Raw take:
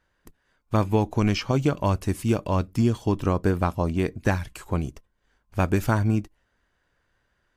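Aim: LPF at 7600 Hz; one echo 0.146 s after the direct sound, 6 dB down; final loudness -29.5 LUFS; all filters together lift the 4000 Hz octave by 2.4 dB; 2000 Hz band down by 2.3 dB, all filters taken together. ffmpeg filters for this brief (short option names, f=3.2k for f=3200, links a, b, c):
-af "lowpass=7.6k,equalizer=f=2k:t=o:g=-4.5,equalizer=f=4k:t=o:g=5.5,aecho=1:1:146:0.501,volume=-5dB"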